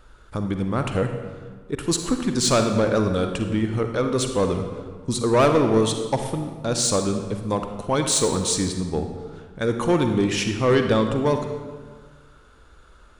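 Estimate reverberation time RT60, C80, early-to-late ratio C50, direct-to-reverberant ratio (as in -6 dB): 1.5 s, 8.0 dB, 6.0 dB, 5.5 dB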